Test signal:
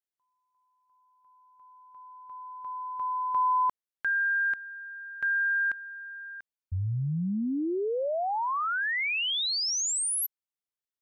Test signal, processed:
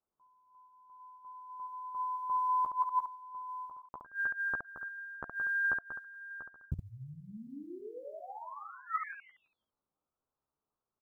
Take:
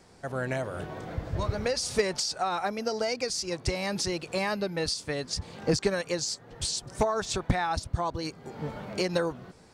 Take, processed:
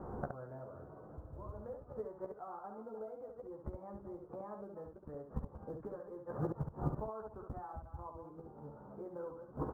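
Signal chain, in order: reverse delay 0.166 s, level -10 dB; steep low-pass 1300 Hz 48 dB/oct; dynamic EQ 170 Hz, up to -5 dB, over -45 dBFS, Q 2.2; in parallel at +2 dB: compressor 6:1, threshold -38 dBFS; on the sum: short-mantissa float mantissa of 6-bit; flipped gate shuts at -28 dBFS, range -25 dB; notch 690 Hz, Q 22; early reflections 14 ms -4.5 dB, 69 ms -5 dB; gain +3.5 dB

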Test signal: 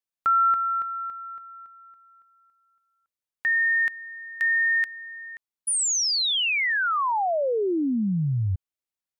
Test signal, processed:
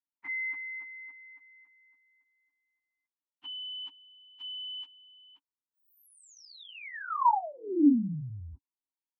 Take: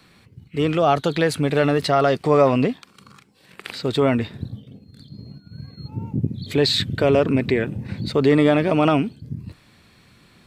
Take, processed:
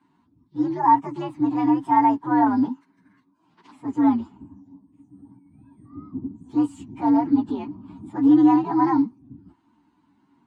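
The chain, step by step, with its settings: inharmonic rescaling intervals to 125%; double band-pass 520 Hz, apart 1.7 oct; gain +8 dB

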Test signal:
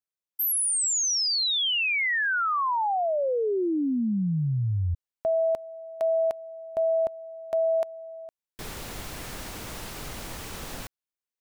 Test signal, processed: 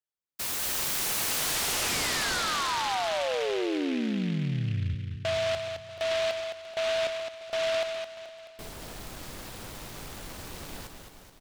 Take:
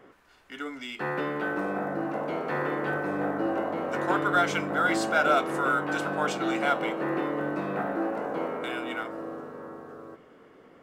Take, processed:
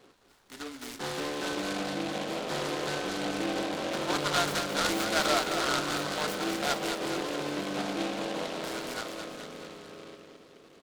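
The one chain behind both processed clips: feedback echo 0.214 s, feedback 59%, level -6.5 dB; noise-modulated delay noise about 2400 Hz, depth 0.11 ms; gain -4.5 dB

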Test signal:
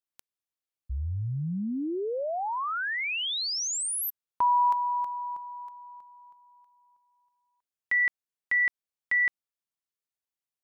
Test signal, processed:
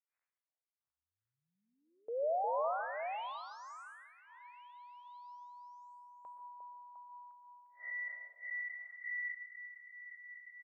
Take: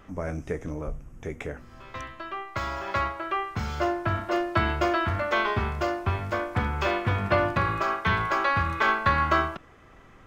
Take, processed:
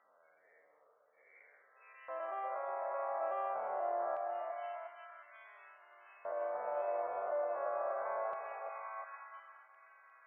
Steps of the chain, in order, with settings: time blur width 0.152 s; EQ curve 320 Hz 0 dB, 540 Hz +13 dB, 4700 Hz -8 dB; compressor 1.5:1, threshold -45 dBFS; limiter -33 dBFS; HPF 72 Hz; loudest bins only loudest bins 64; air absorption 95 m; downsampling 22050 Hz; LFO high-pass square 0.24 Hz 610–2500 Hz; delay with a stepping band-pass 0.353 s, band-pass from 560 Hz, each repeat 0.7 oct, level -2 dB; plate-style reverb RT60 0.53 s, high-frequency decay 0.75×, pre-delay 0.11 s, DRR 8.5 dB; mismatched tape noise reduction decoder only; gain -4 dB

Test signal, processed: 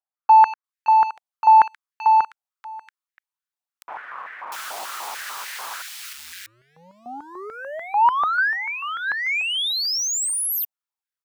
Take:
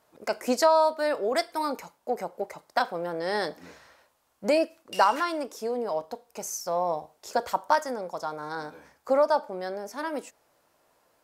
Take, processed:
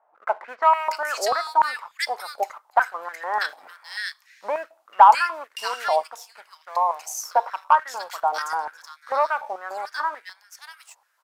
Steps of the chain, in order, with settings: bands offset in time lows, highs 0.64 s, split 1900 Hz; sample leveller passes 1; stepped high-pass 6.8 Hz 770–1800 Hz; gain -1 dB

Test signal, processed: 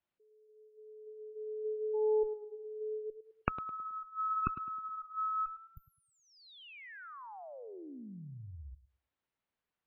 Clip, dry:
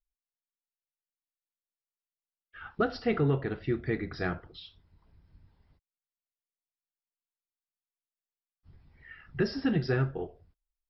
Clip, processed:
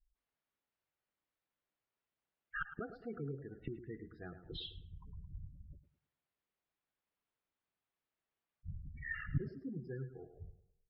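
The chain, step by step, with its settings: flipped gate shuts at -35 dBFS, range -27 dB; added harmonics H 3 -29 dB, 4 -7 dB, 5 -28 dB, 6 -30 dB, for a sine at -21.5 dBFS; spectral gate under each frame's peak -15 dB strong; air absorption 370 m; on a send: tape echo 0.107 s, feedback 43%, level -10 dB, low-pass 1800 Hz; on the sum: gain +10.5 dB

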